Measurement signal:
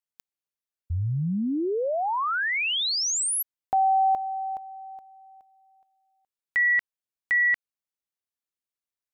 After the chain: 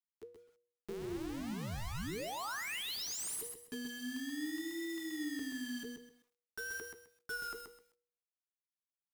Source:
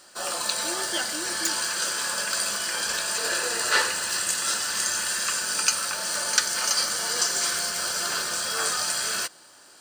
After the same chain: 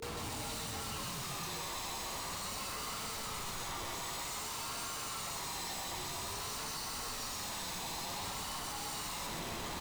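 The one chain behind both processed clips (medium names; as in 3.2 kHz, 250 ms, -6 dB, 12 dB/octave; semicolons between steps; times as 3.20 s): high-pass 88 Hz 12 dB/octave; treble shelf 2.1 kHz -6 dB; reverse; compression 6:1, threshold -38 dBFS; reverse; peak limiter -33 dBFS; Schmitt trigger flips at -59.5 dBFS; wow and flutter 0.48 Hz 100 cents; word length cut 8-bit, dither none; feedback comb 130 Hz, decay 0.53 s, harmonics all, mix 60%; frequency shift -480 Hz; on a send: delay 129 ms -5.5 dB; on the sum: bit-crushed delay 130 ms, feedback 35%, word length 12-bit, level -12 dB; trim +7 dB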